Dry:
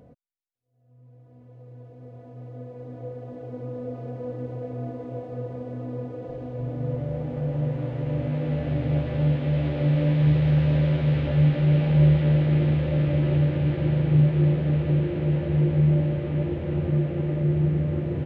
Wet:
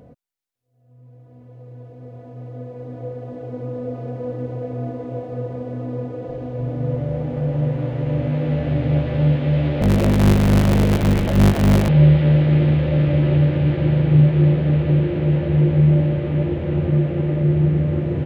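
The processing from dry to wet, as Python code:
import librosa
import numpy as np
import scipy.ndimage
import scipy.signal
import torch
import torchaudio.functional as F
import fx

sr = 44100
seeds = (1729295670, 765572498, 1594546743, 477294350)

y = fx.cycle_switch(x, sr, every=3, mode='inverted', at=(9.81, 11.89))
y = y * 10.0 ** (5.5 / 20.0)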